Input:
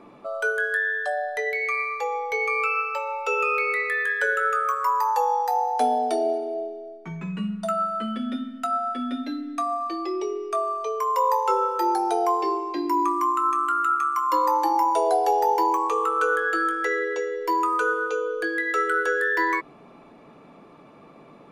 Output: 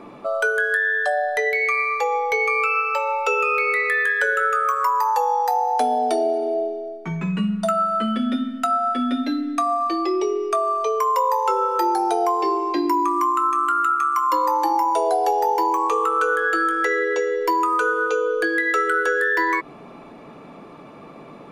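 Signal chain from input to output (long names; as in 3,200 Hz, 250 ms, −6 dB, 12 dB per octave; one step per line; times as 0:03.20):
downward compressor 4 to 1, threshold −25 dBFS, peak gain reduction 7 dB
level +7.5 dB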